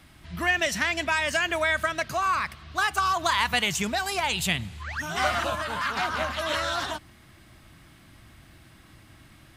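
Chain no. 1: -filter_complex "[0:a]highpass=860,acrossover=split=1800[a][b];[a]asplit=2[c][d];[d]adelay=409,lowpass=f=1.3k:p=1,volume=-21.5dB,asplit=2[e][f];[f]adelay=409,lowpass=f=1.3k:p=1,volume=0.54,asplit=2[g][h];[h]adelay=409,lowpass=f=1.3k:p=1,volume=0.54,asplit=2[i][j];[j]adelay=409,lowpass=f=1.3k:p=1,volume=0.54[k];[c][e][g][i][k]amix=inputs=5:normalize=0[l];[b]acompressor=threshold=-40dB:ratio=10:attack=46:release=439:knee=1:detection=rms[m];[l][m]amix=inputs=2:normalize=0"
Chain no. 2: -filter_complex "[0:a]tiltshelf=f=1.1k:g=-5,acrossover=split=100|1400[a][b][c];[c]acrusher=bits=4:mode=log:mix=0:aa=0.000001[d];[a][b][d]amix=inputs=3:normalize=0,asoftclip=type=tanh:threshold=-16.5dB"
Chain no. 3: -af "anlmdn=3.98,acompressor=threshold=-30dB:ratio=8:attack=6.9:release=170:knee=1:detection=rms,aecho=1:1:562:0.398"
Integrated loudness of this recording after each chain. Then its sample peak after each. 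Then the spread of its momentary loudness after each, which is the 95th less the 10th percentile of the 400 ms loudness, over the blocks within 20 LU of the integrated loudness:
-30.5, -25.5, -34.0 LUFS; -15.5, -16.5, -19.5 dBFS; 9, 6, 4 LU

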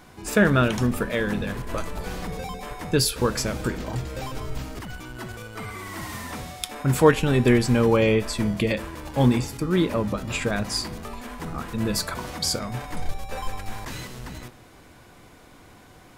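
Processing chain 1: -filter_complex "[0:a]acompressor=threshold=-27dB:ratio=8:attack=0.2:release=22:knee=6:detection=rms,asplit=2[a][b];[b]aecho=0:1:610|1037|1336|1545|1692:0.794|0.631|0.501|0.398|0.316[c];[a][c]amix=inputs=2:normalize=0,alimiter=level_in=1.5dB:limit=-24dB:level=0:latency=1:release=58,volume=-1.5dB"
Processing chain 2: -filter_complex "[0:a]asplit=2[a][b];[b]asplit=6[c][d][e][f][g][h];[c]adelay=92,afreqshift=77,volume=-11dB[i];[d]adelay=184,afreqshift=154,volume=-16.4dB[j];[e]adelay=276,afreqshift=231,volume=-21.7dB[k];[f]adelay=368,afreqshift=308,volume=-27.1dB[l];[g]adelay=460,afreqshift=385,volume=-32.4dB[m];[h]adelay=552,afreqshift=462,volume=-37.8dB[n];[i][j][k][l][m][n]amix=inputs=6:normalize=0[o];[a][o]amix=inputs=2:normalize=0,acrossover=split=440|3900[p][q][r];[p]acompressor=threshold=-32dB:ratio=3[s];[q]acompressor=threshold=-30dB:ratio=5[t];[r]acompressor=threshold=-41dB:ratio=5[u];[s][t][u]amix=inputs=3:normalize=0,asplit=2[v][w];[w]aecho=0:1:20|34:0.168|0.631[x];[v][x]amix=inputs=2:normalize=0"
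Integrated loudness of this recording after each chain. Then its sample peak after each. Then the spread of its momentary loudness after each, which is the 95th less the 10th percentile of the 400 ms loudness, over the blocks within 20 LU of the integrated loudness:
-34.5, -30.5 LUFS; -25.5, -11.0 dBFS; 3, 10 LU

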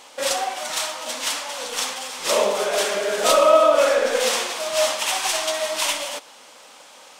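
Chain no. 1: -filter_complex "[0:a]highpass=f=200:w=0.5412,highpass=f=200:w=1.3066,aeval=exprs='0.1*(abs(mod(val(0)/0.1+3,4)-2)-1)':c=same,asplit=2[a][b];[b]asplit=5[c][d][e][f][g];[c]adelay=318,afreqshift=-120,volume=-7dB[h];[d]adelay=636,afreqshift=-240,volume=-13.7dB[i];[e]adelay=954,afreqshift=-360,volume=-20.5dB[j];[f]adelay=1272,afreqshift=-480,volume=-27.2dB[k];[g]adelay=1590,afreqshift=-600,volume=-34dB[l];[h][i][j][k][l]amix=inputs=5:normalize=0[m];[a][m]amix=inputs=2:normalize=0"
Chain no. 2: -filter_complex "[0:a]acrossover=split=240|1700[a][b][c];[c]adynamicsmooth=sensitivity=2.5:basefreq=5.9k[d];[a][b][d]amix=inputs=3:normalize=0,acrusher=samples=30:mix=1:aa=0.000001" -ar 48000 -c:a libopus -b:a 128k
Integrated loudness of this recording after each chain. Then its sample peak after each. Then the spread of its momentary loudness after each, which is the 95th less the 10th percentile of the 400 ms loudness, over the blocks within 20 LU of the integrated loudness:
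-24.0, -21.5 LUFS; -14.0, -4.5 dBFS; 6, 16 LU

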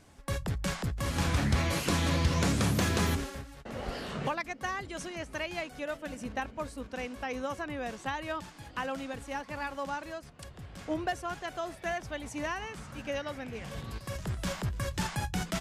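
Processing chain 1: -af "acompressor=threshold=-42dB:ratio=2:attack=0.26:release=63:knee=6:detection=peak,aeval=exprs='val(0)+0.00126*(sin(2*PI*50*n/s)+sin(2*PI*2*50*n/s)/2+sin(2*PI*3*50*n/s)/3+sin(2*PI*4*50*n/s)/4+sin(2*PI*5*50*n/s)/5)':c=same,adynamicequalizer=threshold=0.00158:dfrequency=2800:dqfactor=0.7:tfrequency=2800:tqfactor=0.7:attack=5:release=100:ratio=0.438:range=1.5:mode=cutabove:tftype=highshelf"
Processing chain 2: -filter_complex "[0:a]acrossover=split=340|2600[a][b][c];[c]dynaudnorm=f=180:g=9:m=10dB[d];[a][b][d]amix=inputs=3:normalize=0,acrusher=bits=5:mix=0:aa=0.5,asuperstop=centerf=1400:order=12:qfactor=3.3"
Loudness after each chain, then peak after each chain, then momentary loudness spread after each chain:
-42.5, -31.0 LUFS; -29.0, -7.0 dBFS; 7, 14 LU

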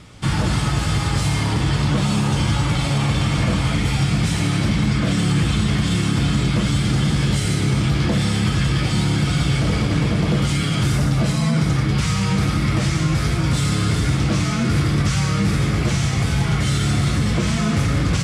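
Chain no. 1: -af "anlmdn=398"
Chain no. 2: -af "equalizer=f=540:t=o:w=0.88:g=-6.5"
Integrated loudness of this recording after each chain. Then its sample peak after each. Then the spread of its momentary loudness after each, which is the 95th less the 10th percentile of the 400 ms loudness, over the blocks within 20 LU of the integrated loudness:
-19.5, -19.5 LUFS; -8.5, -8.5 dBFS; 1, 1 LU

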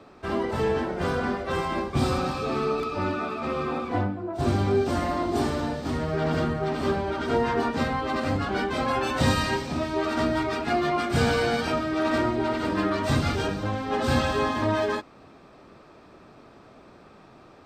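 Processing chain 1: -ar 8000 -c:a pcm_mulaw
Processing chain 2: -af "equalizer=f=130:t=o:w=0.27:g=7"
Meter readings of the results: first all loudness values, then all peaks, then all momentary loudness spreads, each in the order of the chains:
-26.5, -26.0 LUFS; -10.5, -8.5 dBFS; 5, 5 LU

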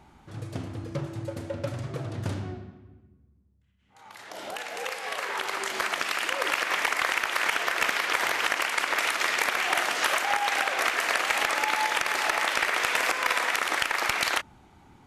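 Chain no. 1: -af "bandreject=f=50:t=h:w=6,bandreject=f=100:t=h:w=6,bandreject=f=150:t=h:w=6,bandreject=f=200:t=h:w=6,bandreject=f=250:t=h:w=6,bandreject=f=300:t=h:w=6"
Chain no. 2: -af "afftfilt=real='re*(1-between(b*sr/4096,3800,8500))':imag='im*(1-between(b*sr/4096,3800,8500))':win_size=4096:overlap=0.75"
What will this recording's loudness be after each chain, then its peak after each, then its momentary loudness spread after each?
-26.0, -26.5 LUFS; -13.5, -11.0 dBFS; 12, 12 LU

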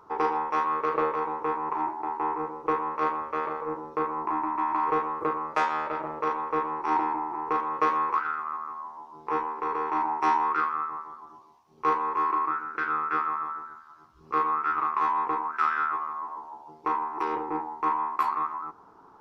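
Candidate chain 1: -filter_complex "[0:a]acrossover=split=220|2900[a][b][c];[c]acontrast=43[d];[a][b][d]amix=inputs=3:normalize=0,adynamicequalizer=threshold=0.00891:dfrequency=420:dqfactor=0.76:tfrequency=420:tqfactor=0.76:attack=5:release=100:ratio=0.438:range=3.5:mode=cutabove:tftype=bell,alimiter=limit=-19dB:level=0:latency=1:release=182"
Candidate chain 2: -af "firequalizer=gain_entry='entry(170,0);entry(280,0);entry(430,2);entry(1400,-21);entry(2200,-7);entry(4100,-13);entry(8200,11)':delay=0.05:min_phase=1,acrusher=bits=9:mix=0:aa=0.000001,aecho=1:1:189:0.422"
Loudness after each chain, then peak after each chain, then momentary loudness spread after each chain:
-31.0, -34.5 LUFS; -19.0, -16.5 dBFS; 8, 15 LU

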